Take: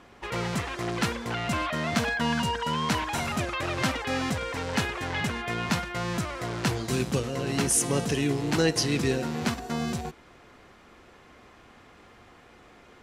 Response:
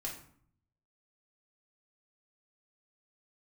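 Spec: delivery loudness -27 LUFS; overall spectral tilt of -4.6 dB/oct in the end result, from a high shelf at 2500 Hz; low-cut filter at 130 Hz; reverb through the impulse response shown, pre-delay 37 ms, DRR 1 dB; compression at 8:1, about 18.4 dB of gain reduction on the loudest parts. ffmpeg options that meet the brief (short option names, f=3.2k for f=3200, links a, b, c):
-filter_complex "[0:a]highpass=130,highshelf=f=2.5k:g=-4,acompressor=threshold=-41dB:ratio=8,asplit=2[a][b];[1:a]atrim=start_sample=2205,adelay=37[c];[b][c]afir=irnorm=-1:irlink=0,volume=-1dB[d];[a][d]amix=inputs=2:normalize=0,volume=15dB"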